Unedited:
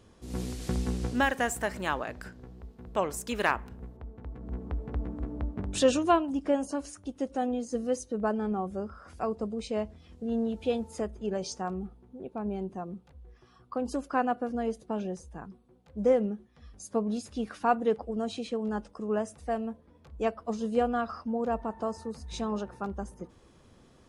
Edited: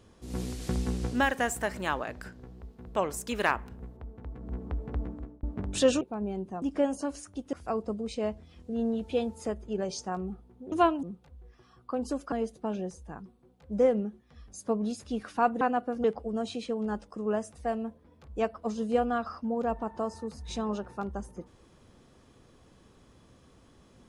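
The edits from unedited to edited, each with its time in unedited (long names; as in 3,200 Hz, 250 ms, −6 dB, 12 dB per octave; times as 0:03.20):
0:05.03–0:05.43: fade out
0:06.01–0:06.32: swap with 0:12.25–0:12.86
0:07.23–0:09.06: remove
0:14.15–0:14.58: move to 0:17.87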